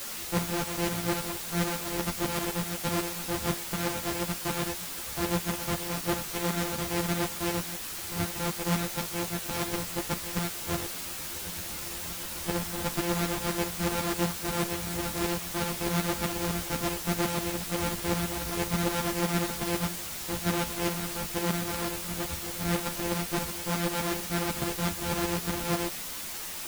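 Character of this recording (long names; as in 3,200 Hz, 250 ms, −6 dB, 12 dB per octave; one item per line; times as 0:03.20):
a buzz of ramps at a fixed pitch in blocks of 256 samples
tremolo saw up 8 Hz, depth 70%
a quantiser's noise floor 6 bits, dither triangular
a shimmering, thickened sound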